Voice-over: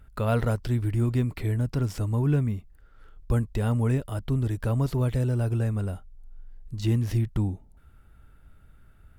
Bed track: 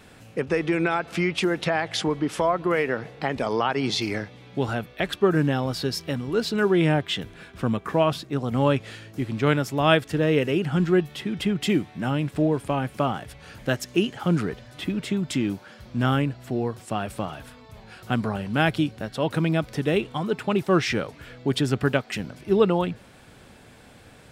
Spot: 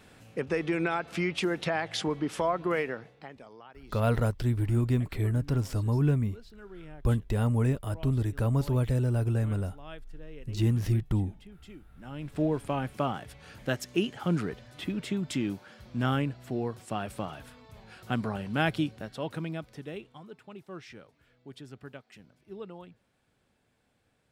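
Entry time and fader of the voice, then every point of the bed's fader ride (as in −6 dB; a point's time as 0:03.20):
3.75 s, −1.5 dB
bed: 0:02.78 −5.5 dB
0:03.57 −27 dB
0:11.84 −27 dB
0:12.41 −5.5 dB
0:18.84 −5.5 dB
0:20.46 −23 dB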